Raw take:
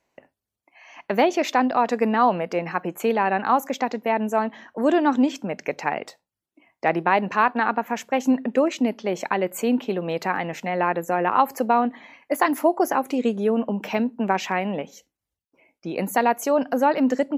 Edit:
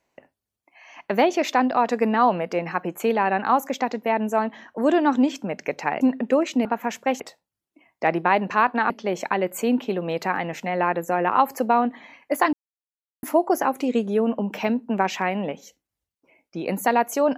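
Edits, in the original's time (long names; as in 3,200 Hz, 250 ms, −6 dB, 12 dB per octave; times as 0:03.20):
0:06.01–0:07.71: swap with 0:08.26–0:08.90
0:12.53: splice in silence 0.70 s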